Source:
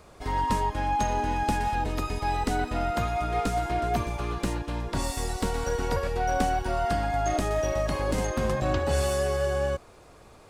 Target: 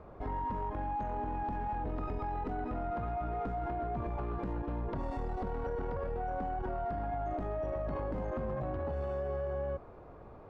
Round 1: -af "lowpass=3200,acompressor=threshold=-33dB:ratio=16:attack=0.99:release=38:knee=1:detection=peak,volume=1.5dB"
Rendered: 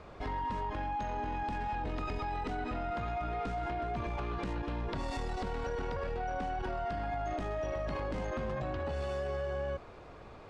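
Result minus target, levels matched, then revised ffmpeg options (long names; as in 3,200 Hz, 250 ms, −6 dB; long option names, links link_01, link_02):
4,000 Hz band +14.5 dB
-af "lowpass=1100,acompressor=threshold=-33dB:ratio=16:attack=0.99:release=38:knee=1:detection=peak,volume=1.5dB"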